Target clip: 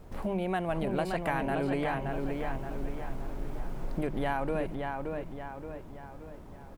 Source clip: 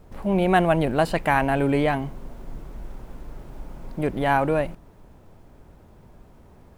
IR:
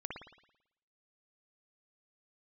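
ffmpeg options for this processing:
-filter_complex "[0:a]bandreject=f=50:t=h:w=6,bandreject=f=100:t=h:w=6,bandreject=f=150:t=h:w=6,bandreject=f=200:t=h:w=6,acompressor=threshold=-30dB:ratio=4,asplit=2[a][b];[b]adelay=574,lowpass=f=3.6k:p=1,volume=-4dB,asplit=2[c][d];[d]adelay=574,lowpass=f=3.6k:p=1,volume=0.49,asplit=2[e][f];[f]adelay=574,lowpass=f=3.6k:p=1,volume=0.49,asplit=2[g][h];[h]adelay=574,lowpass=f=3.6k:p=1,volume=0.49,asplit=2[i][j];[j]adelay=574,lowpass=f=3.6k:p=1,volume=0.49,asplit=2[k][l];[l]adelay=574,lowpass=f=3.6k:p=1,volume=0.49[m];[a][c][e][g][i][k][m]amix=inputs=7:normalize=0"

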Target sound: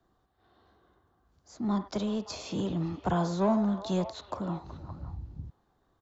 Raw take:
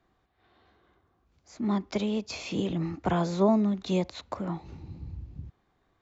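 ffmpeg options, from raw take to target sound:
-filter_complex "[0:a]equalizer=f=2.3k:t=o:w=0.66:g=-12.5,acrossover=split=210|570|3300[a][b][c][d];[b]asoftclip=type=tanh:threshold=-33.5dB[e];[c]aecho=1:1:49|97|374|570:0.355|0.266|0.237|0.251[f];[a][e][f][d]amix=inputs=4:normalize=0"

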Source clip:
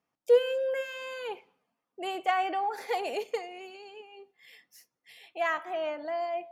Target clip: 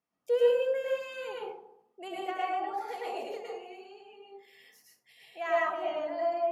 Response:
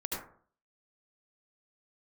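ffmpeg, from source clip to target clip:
-filter_complex "[0:a]asettb=1/sr,asplit=3[a][b][c];[a]atrim=end=2.084[d];[b]atrim=start=2.08:end=4.12,asetpts=PTS-STARTPTS,afade=t=in:d=0.004:c=qsin,afade=t=out:st=2.036:d=0.004:c=qsin,flanger=delay=5.8:depth=2.6:regen=-62:speed=1:shape=sinusoidal[e];[c]atrim=start=4.116[f];[d][e]acrossfade=d=0.004:c1=hsin:c2=qsin[g];[g][f]acrossfade=d=0.004:c1=qsin:c2=hsin[h];[1:a]atrim=start_sample=2205,asetrate=30429,aresample=44100[i];[h][i]afir=irnorm=-1:irlink=0,volume=-6.5dB"

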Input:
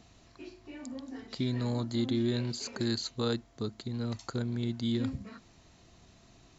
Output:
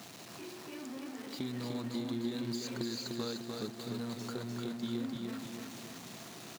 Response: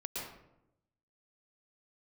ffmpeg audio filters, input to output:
-af "aeval=exprs='val(0)+0.5*0.0168*sgn(val(0))':c=same,agate=range=-8dB:threshold=-32dB:ratio=16:detection=peak,highpass=f=140:w=0.5412,highpass=f=140:w=1.3066,acompressor=threshold=-36dB:ratio=6,aecho=1:1:299|598|897|1196|1495|1794|2093:0.631|0.322|0.164|0.0837|0.0427|0.0218|0.0111"

